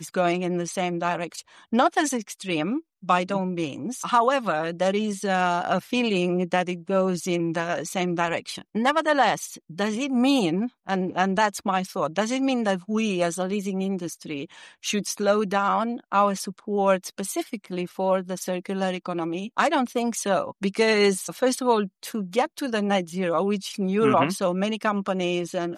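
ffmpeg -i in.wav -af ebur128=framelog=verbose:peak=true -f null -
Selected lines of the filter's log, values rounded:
Integrated loudness:
  I:         -24.8 LUFS
  Threshold: -34.8 LUFS
Loudness range:
  LRA:         2.5 LU
  Threshold: -44.8 LUFS
  LRA low:   -26.2 LUFS
  LRA high:  -23.8 LUFS
True peak:
  Peak:       -7.4 dBFS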